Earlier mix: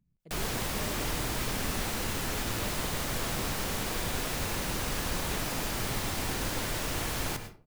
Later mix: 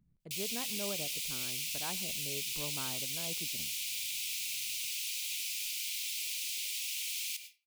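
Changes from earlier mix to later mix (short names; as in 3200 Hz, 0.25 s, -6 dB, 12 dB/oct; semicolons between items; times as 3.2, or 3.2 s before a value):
speech +3.0 dB; background: add steep high-pass 2300 Hz 72 dB/oct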